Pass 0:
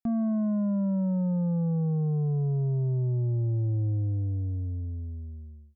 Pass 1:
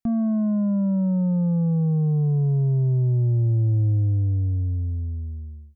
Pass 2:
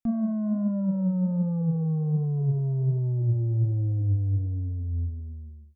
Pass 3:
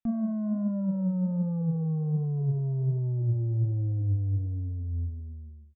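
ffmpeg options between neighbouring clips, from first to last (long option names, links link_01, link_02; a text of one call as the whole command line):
ffmpeg -i in.wav -af "lowshelf=frequency=160:gain=7.5,volume=2dB" out.wav
ffmpeg -i in.wav -af "flanger=delay=3.3:depth=8.5:regen=68:speed=1.3:shape=sinusoidal" out.wav
ffmpeg -i in.wav -af "aresample=8000,aresample=44100,volume=-2.5dB" out.wav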